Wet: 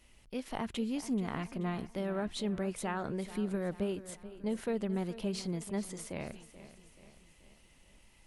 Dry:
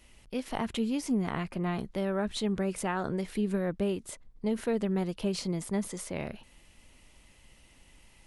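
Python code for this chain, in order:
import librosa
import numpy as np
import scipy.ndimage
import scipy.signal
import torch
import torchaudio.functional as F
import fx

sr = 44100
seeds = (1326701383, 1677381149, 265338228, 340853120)

y = fx.echo_feedback(x, sr, ms=432, feedback_pct=50, wet_db=-15.0)
y = F.gain(torch.from_numpy(y), -4.5).numpy()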